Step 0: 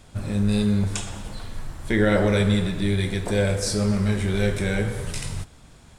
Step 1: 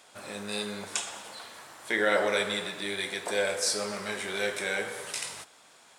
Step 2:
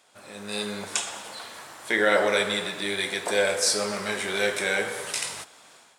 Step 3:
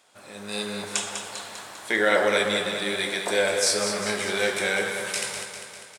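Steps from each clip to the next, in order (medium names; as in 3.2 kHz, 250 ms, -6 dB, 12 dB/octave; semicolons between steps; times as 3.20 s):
high-pass 600 Hz 12 dB/octave
level rider gain up to 10.5 dB; trim -5 dB
feedback delay 199 ms, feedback 60%, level -8 dB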